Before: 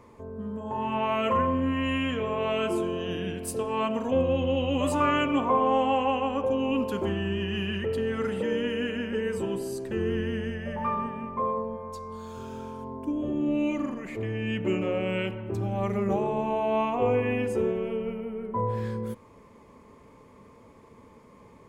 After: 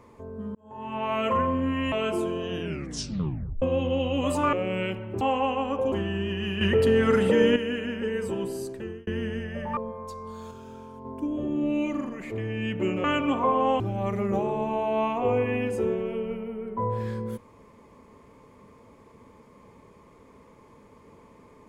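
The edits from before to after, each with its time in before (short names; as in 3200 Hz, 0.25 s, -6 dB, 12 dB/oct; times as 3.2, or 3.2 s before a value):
0.55–1.18 fade in
1.92–2.49 cut
3.17 tape stop 1.02 s
5.1–5.86 swap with 14.89–15.57
6.57–7.03 cut
7.72–8.67 gain +8 dB
9.74–10.18 fade out
10.88–11.62 cut
12.36–12.9 gain -5 dB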